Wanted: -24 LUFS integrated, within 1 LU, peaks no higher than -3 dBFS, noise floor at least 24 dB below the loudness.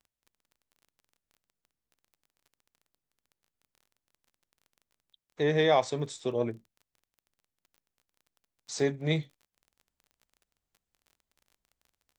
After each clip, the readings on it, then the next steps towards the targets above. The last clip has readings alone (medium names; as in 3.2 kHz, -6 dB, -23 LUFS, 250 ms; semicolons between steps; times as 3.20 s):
tick rate 23 per s; loudness -29.0 LUFS; peak level -12.5 dBFS; loudness target -24.0 LUFS
-> de-click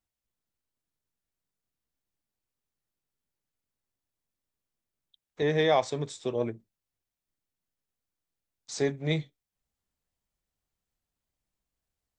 tick rate 0 per s; loudness -29.0 LUFS; peak level -12.5 dBFS; loudness target -24.0 LUFS
-> trim +5 dB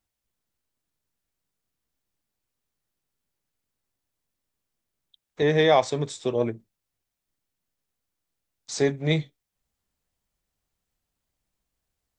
loudness -24.0 LUFS; peak level -7.5 dBFS; noise floor -84 dBFS